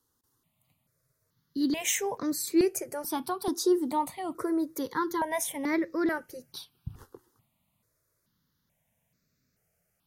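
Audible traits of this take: notches that jump at a steady rate 2.3 Hz 640–3100 Hz

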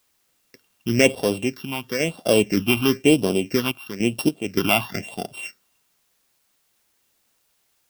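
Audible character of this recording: a buzz of ramps at a fixed pitch in blocks of 16 samples; phasing stages 6, 1 Hz, lowest notch 470–2100 Hz; random-step tremolo, depth 75%; a quantiser's noise floor 12-bit, dither triangular

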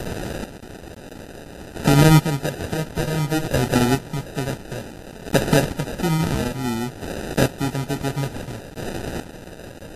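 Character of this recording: a quantiser's noise floor 6-bit, dither triangular; chopped level 0.57 Hz, depth 65%, duty 25%; aliases and images of a low sample rate 1.1 kHz, jitter 0%; Vorbis

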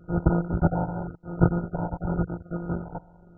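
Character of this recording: a buzz of ramps at a fixed pitch in blocks of 256 samples; phasing stages 8, 0.91 Hz, lowest notch 370–1300 Hz; aliases and images of a low sample rate 1.6 kHz, jitter 0%; MP2

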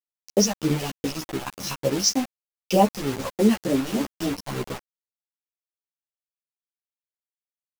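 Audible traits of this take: phasing stages 2, 3.3 Hz, lowest notch 320–3800 Hz; a quantiser's noise floor 6-bit, dither none; a shimmering, thickened sound

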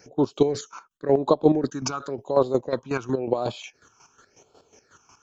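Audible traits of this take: phasing stages 8, 0.93 Hz, lowest notch 530–1900 Hz; chopped level 5.5 Hz, depth 65%, duty 35%; AAC

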